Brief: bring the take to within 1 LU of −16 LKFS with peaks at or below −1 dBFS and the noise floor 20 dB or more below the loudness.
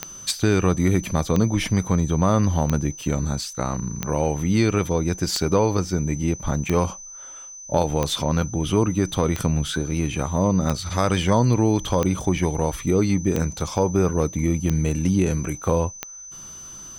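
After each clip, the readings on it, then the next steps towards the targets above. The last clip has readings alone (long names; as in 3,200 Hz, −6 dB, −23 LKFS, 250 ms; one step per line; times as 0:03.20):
number of clicks 13; interfering tone 6,100 Hz; level of the tone −37 dBFS; integrated loudness −22.5 LKFS; sample peak −6.0 dBFS; target loudness −16.0 LKFS
→ click removal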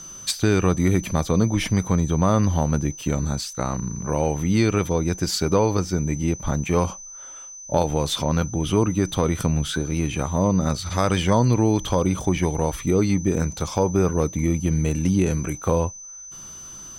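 number of clicks 0; interfering tone 6,100 Hz; level of the tone −37 dBFS
→ notch filter 6,100 Hz, Q 30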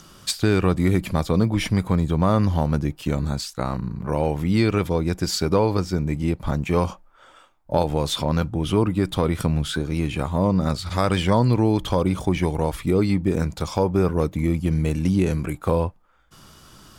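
interfering tone none found; integrated loudness −22.5 LKFS; sample peak −6.0 dBFS; target loudness −16.0 LKFS
→ level +6.5 dB
brickwall limiter −1 dBFS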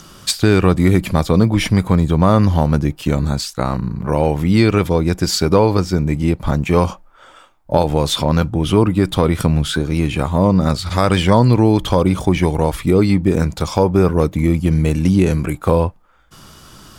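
integrated loudness −16.0 LKFS; sample peak −1.0 dBFS; background noise floor −46 dBFS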